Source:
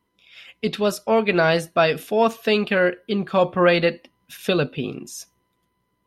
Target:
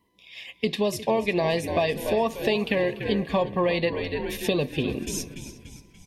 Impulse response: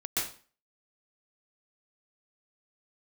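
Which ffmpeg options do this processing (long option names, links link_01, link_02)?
-filter_complex "[0:a]asuperstop=centerf=1400:order=8:qfactor=2.7,asplit=2[link_01][link_02];[link_02]asplit=5[link_03][link_04][link_05][link_06][link_07];[link_03]adelay=290,afreqshift=-71,volume=-13.5dB[link_08];[link_04]adelay=580,afreqshift=-142,volume=-19.3dB[link_09];[link_05]adelay=870,afreqshift=-213,volume=-25.2dB[link_10];[link_06]adelay=1160,afreqshift=-284,volume=-31dB[link_11];[link_07]adelay=1450,afreqshift=-355,volume=-36.9dB[link_12];[link_08][link_09][link_10][link_11][link_12]amix=inputs=5:normalize=0[link_13];[link_01][link_13]amix=inputs=2:normalize=0,acompressor=threshold=-24dB:ratio=6,asplit=2[link_14][link_15];[link_15]adelay=358,lowpass=frequency=3300:poles=1,volume=-15.5dB,asplit=2[link_16][link_17];[link_17]adelay=358,lowpass=frequency=3300:poles=1,volume=0.27,asplit=2[link_18][link_19];[link_19]adelay=358,lowpass=frequency=3300:poles=1,volume=0.27[link_20];[link_16][link_18][link_20]amix=inputs=3:normalize=0[link_21];[link_14][link_21]amix=inputs=2:normalize=0,volume=3dB"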